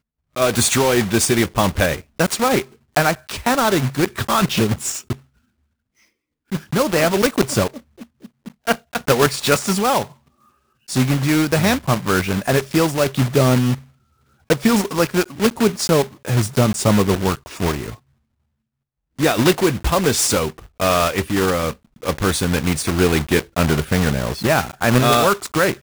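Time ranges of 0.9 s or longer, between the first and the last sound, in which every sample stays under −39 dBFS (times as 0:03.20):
0:05.16–0:06.52
0:17.95–0:19.19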